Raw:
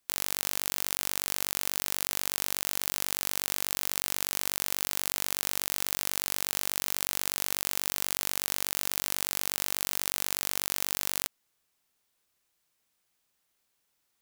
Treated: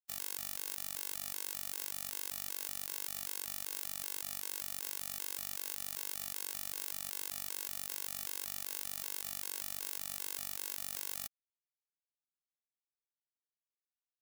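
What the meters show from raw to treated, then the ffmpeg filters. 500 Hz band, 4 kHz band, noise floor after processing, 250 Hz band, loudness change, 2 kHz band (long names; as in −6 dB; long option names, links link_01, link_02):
−13.0 dB, −11.5 dB, below −85 dBFS, −13.0 dB, −9.0 dB, −12.5 dB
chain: -af "highshelf=frequency=7000:gain=4.5,acrusher=bits=4:mix=0:aa=0.5,afftfilt=real='re*gt(sin(2*PI*2.6*pts/sr)*(1-2*mod(floor(b*sr/1024/280),2)),0)':imag='im*gt(sin(2*PI*2.6*pts/sr)*(1-2*mod(floor(b*sr/1024/280),2)),0)':win_size=1024:overlap=0.75,volume=-9dB"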